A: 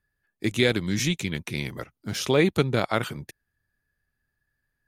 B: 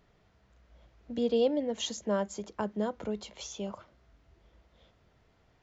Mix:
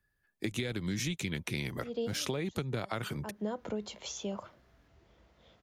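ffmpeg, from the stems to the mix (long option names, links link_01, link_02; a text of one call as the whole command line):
ffmpeg -i stem1.wav -i stem2.wav -filter_complex "[0:a]acrossover=split=150[link_01][link_02];[link_02]acompressor=threshold=-24dB:ratio=6[link_03];[link_01][link_03]amix=inputs=2:normalize=0,volume=-0.5dB,asplit=2[link_04][link_05];[1:a]highpass=73,adelay=650,volume=1.5dB[link_06];[link_05]apad=whole_len=276737[link_07];[link_06][link_07]sidechaincompress=threshold=-51dB:ratio=5:attack=10:release=159[link_08];[link_04][link_08]amix=inputs=2:normalize=0,acompressor=threshold=-31dB:ratio=6" out.wav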